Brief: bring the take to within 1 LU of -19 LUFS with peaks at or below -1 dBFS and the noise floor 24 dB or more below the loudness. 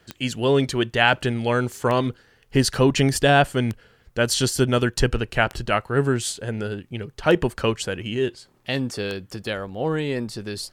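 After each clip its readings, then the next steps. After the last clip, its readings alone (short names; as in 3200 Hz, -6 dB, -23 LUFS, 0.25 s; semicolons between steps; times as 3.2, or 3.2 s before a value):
clicks 6; loudness -22.5 LUFS; peak -2.0 dBFS; loudness target -19.0 LUFS
-> de-click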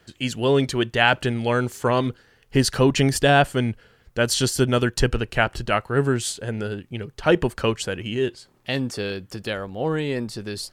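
clicks 0; loudness -22.5 LUFS; peak -2.0 dBFS; loudness target -19.0 LUFS
-> gain +3.5 dB; limiter -1 dBFS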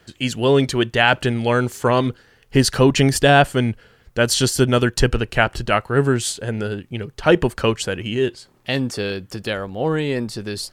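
loudness -19.5 LUFS; peak -1.0 dBFS; noise floor -56 dBFS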